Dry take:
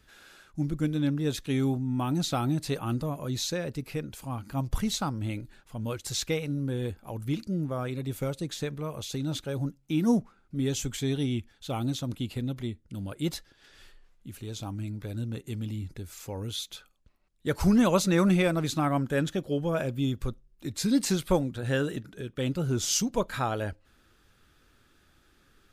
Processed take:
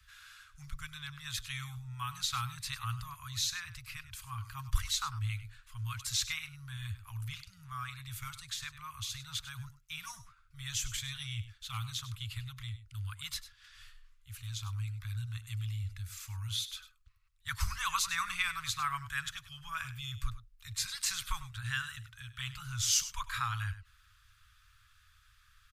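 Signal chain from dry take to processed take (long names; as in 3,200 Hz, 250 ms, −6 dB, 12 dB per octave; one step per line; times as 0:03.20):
de-essing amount 40%
Chebyshev band-stop filter 110–1,100 Hz, order 4
single-tap delay 99 ms −14 dB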